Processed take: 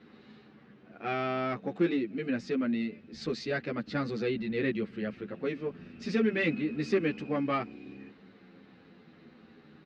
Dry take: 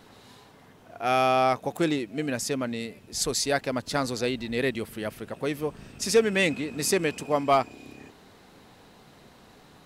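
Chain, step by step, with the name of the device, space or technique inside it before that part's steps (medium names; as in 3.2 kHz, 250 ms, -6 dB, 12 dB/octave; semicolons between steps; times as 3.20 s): barber-pole flanger into a guitar amplifier (endless flanger 9.8 ms -0.31 Hz; saturation -19 dBFS, distortion -18 dB; cabinet simulation 80–3700 Hz, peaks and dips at 99 Hz -7 dB, 210 Hz +9 dB, 330 Hz +4 dB, 660 Hz -8 dB, 950 Hz -10 dB, 3.3 kHz -6 dB)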